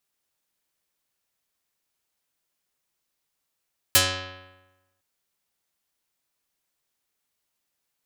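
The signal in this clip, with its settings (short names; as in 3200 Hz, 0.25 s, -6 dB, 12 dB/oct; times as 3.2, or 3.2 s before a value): plucked string F#2, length 1.06 s, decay 1.11 s, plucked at 0.41, dark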